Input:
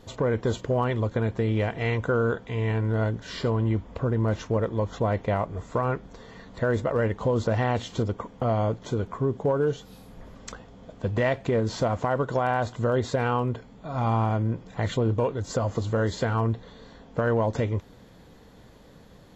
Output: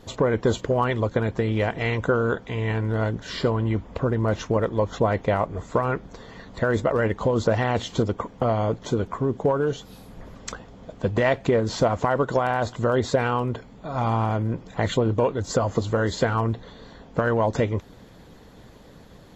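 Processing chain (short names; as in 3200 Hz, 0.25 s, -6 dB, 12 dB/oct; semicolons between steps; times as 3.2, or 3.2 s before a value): harmonic-percussive split harmonic -6 dB; gain +6 dB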